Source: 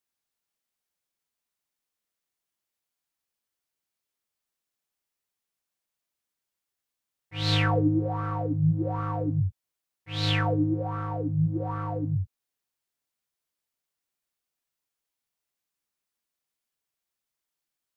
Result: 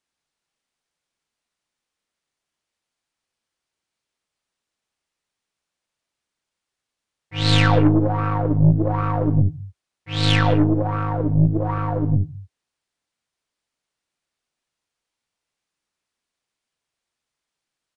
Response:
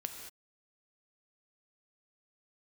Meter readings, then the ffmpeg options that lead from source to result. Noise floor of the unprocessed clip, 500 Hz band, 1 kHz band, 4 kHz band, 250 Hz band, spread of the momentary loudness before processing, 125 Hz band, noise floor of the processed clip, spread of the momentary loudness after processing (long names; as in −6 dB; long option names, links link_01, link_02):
below −85 dBFS, +8.0 dB, +7.5 dB, +7.0 dB, +8.0 dB, 8 LU, +8.0 dB, −85 dBFS, 8 LU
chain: -filter_complex "[0:a]asplit=2[link_01][link_02];[1:a]atrim=start_sample=2205,afade=type=out:start_time=0.27:duration=0.01,atrim=end_sample=12348,lowpass=6300[link_03];[link_02][link_03]afir=irnorm=-1:irlink=0,volume=-2.5dB[link_04];[link_01][link_04]amix=inputs=2:normalize=0,aeval=exprs='0.422*(cos(1*acos(clip(val(0)/0.422,-1,1)))-cos(1*PI/2))+0.0422*(cos(6*acos(clip(val(0)/0.422,-1,1)))-cos(6*PI/2))':channel_layout=same,aresample=22050,aresample=44100,volume=3dB"